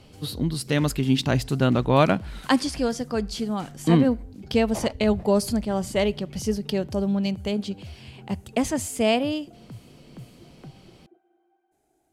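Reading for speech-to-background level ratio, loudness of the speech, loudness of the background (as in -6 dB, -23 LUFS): 19.0 dB, -24.5 LUFS, -43.5 LUFS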